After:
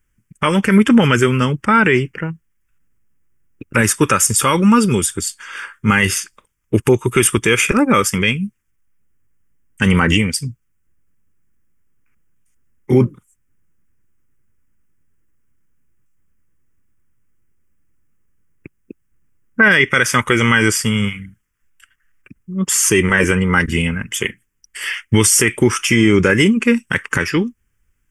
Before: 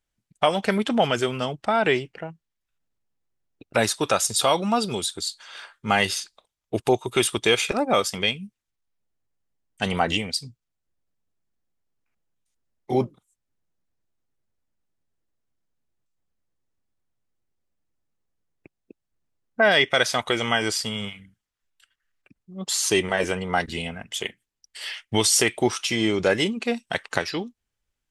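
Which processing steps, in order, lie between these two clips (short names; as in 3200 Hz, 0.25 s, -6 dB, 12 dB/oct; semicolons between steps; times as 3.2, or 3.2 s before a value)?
low shelf 210 Hz +4 dB; fixed phaser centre 1700 Hz, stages 4; maximiser +15 dB; gain -1 dB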